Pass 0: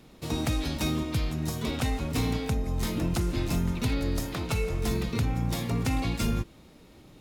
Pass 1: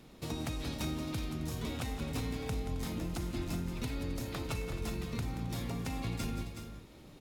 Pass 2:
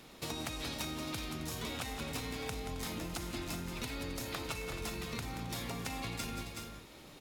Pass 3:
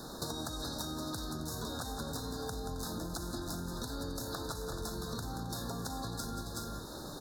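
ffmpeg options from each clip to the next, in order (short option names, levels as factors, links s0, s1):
-filter_complex "[0:a]acompressor=threshold=0.02:ratio=3,asplit=2[s0][s1];[s1]aecho=0:1:179|267|372|425:0.299|0.158|0.376|0.141[s2];[s0][s2]amix=inputs=2:normalize=0,volume=0.75"
-af "lowshelf=f=430:g=-11,acompressor=threshold=0.00794:ratio=6,volume=2.11"
-af "asuperstop=centerf=2500:order=20:qfactor=1.3,acompressor=threshold=0.00447:ratio=6,volume=3.35"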